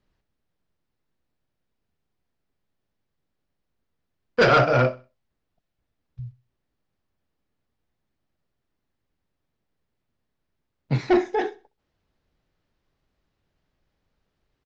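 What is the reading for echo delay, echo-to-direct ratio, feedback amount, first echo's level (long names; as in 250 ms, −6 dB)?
64 ms, −20.0 dB, 33%, −20.5 dB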